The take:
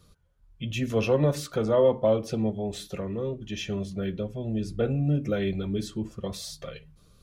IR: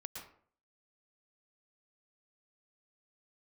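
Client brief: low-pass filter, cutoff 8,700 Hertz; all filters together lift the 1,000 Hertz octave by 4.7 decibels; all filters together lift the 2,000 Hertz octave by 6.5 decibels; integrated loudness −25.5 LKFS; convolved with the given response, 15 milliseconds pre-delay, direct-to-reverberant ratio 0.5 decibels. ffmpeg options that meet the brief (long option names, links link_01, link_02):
-filter_complex "[0:a]lowpass=8700,equalizer=frequency=1000:width_type=o:gain=4,equalizer=frequency=2000:width_type=o:gain=8,asplit=2[link_01][link_02];[1:a]atrim=start_sample=2205,adelay=15[link_03];[link_02][link_03]afir=irnorm=-1:irlink=0,volume=2.5dB[link_04];[link_01][link_04]amix=inputs=2:normalize=0,volume=-2dB"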